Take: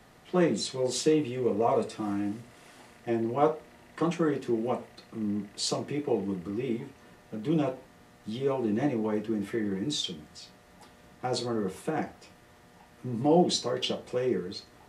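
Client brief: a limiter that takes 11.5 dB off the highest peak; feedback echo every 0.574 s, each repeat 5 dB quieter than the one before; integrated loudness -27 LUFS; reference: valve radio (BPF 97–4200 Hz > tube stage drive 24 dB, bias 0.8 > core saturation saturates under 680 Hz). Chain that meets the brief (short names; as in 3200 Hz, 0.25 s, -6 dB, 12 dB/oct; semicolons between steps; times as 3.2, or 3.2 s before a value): limiter -21.5 dBFS; BPF 97–4200 Hz; feedback echo 0.574 s, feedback 56%, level -5 dB; tube stage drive 24 dB, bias 0.8; core saturation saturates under 680 Hz; gain +12.5 dB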